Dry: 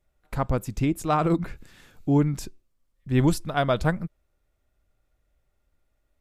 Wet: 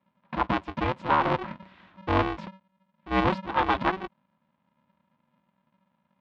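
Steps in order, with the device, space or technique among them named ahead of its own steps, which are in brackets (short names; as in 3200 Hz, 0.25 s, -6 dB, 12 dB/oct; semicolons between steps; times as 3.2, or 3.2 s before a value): ring modulator pedal into a guitar cabinet (polarity switched at an audio rate 190 Hz; speaker cabinet 75–3400 Hz, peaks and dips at 130 Hz -6 dB, 440 Hz -8 dB, 1000 Hz +9 dB); gain -2 dB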